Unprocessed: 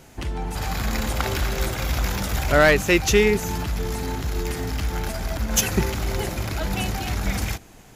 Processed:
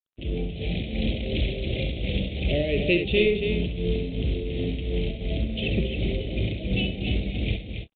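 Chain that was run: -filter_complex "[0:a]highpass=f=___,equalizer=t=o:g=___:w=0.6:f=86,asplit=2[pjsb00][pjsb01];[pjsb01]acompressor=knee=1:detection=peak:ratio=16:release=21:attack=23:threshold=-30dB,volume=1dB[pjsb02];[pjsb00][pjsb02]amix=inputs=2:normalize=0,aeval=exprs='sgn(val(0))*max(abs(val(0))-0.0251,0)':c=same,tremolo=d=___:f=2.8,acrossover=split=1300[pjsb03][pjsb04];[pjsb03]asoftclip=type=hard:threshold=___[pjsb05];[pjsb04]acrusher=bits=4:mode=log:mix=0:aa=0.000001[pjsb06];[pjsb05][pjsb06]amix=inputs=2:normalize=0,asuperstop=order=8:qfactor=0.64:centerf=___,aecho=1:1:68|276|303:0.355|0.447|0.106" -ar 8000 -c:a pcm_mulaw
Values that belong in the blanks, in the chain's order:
45, -2.5, 0.68, -18.5dB, 1200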